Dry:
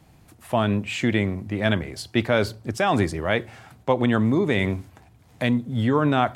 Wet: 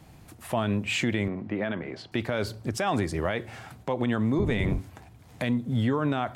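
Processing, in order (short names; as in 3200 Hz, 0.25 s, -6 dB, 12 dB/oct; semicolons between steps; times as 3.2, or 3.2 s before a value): 4.38–4.79 octaver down 1 oct, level +3 dB; compressor 4:1, threshold -25 dBFS, peak gain reduction 9.5 dB; limiter -18 dBFS, peak gain reduction 6 dB; 1.28–2.12 BPF 180–2400 Hz; gain +2.5 dB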